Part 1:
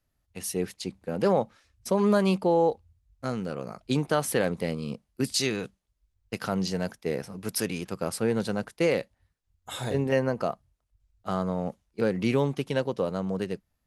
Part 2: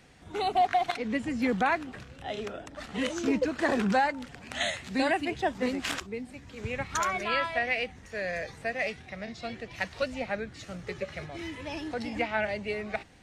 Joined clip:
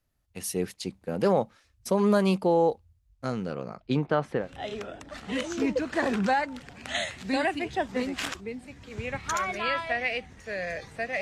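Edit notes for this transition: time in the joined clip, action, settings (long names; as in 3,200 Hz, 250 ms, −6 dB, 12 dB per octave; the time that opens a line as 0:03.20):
part 1
0:03.12–0:04.49: low-pass filter 11,000 Hz → 1,400 Hz
0:04.41: continue with part 2 from 0:02.07, crossfade 0.16 s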